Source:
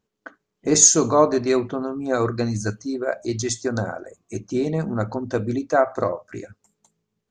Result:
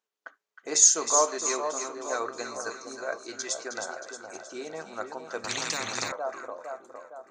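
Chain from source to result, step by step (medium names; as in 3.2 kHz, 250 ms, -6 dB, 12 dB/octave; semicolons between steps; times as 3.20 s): high-pass 690 Hz 12 dB/octave; on a send: two-band feedback delay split 1.2 kHz, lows 460 ms, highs 314 ms, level -7 dB; 5.44–6.12 s: on the sum: spectrum-flattening compressor 10:1; trim -4.5 dB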